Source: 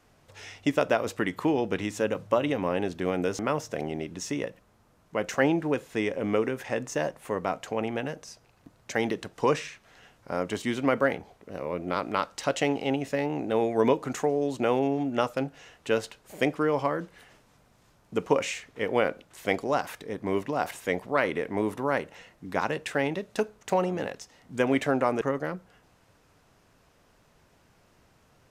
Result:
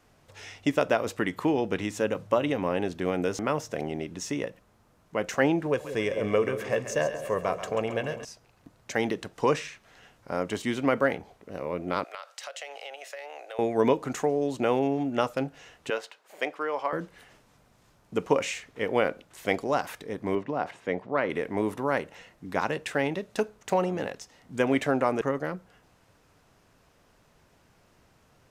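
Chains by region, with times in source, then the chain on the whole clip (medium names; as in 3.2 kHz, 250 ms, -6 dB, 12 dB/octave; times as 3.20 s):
5.66–8.25 s: comb 1.8 ms, depth 47% + two-band feedback delay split 570 Hz, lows 183 ms, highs 135 ms, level -10.5 dB
12.04–13.59 s: steep high-pass 560 Hz + peaking EQ 940 Hz -8 dB 0.52 oct + compression 5:1, threshold -36 dBFS
15.90–16.93 s: high-pass 600 Hz + peaking EQ 11 kHz -9 dB 1.9 oct
20.35–21.30 s: high-pass 100 Hz + tape spacing loss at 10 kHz 21 dB
whole clip: none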